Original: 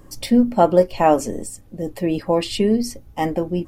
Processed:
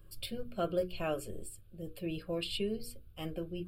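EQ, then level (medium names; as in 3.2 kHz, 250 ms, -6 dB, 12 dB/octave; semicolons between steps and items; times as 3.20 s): high-order bell 740 Hz -10 dB; hum notches 60/120/180/240/300/360/420/480 Hz; static phaser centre 1.3 kHz, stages 8; -8.0 dB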